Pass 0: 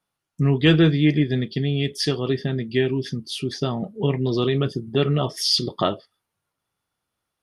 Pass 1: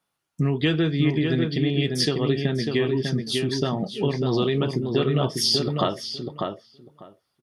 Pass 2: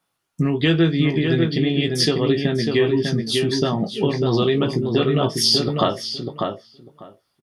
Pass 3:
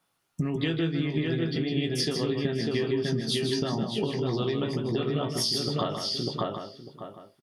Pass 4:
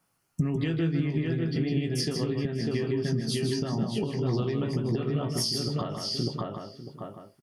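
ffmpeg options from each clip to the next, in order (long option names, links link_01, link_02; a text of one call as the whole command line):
ffmpeg -i in.wav -filter_complex "[0:a]lowshelf=frequency=95:gain=-8,acompressor=threshold=-21dB:ratio=6,asplit=2[link_01][link_02];[link_02]adelay=597,lowpass=frequency=2200:poles=1,volume=-4dB,asplit=2[link_03][link_04];[link_04]adelay=597,lowpass=frequency=2200:poles=1,volume=0.15,asplit=2[link_05][link_06];[link_06]adelay=597,lowpass=frequency=2200:poles=1,volume=0.15[link_07];[link_03][link_05][link_07]amix=inputs=3:normalize=0[link_08];[link_01][link_08]amix=inputs=2:normalize=0,volume=2.5dB" out.wav
ffmpeg -i in.wav -filter_complex "[0:a]asplit=2[link_01][link_02];[link_02]adelay=18,volume=-8dB[link_03];[link_01][link_03]amix=inputs=2:normalize=0,volume=3.5dB" out.wav
ffmpeg -i in.wav -af "acompressor=threshold=-26dB:ratio=6,aecho=1:1:156:0.447" out.wav
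ffmpeg -i in.wav -af "equalizer=frequency=3600:width=4.4:gain=-11,alimiter=limit=-20.5dB:level=0:latency=1:release=435,bass=frequency=250:gain=6,treble=frequency=4000:gain=3" out.wav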